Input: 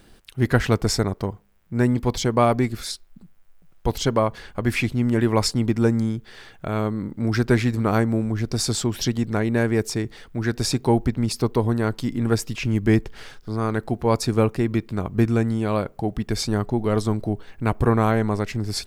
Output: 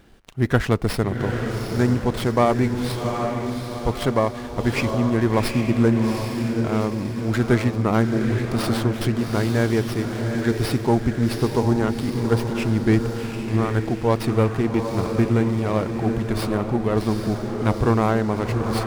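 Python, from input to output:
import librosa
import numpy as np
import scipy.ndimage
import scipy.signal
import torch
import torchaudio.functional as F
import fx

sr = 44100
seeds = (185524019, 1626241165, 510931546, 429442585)

y = scipy.signal.medfilt(x, 3)
y = fx.echo_diffused(y, sr, ms=787, feedback_pct=49, wet_db=-5.0)
y = fx.running_max(y, sr, window=5)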